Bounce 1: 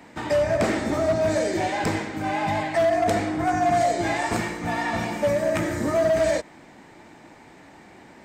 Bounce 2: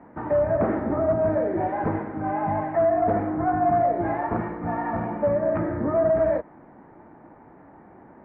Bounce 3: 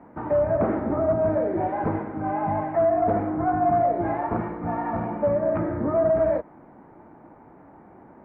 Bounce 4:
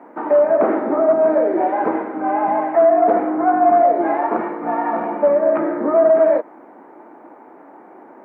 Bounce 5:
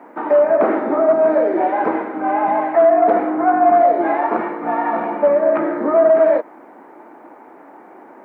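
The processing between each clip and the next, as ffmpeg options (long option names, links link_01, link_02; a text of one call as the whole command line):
ffmpeg -i in.wav -af "lowpass=frequency=1400:width=0.5412,lowpass=frequency=1400:width=1.3066" out.wav
ffmpeg -i in.wav -af "equalizer=frequency=1800:width=5.8:gain=-5" out.wav
ffmpeg -i in.wav -af "highpass=frequency=280:width=0.5412,highpass=frequency=280:width=1.3066,volume=8dB" out.wav
ffmpeg -i in.wav -af "highshelf=frequency=2200:gain=9" out.wav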